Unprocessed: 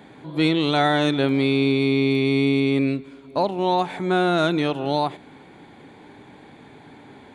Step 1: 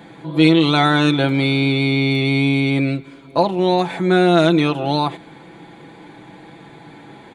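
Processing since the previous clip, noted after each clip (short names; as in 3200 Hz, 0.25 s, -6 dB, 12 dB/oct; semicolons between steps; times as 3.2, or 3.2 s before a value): comb 6 ms, depth 61%; gain +4 dB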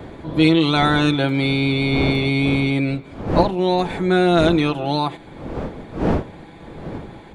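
wind noise 400 Hz -26 dBFS; gain -2 dB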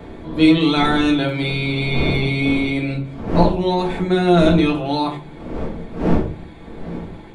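shoebox room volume 240 m³, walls furnished, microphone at 1.6 m; gain -3 dB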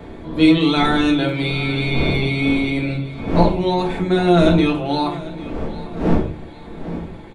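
feedback echo 0.797 s, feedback 41%, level -17.5 dB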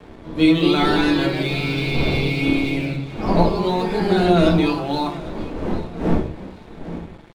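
crossover distortion -40.5 dBFS; echoes that change speed 0.272 s, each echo +2 st, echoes 2, each echo -6 dB; gain -2 dB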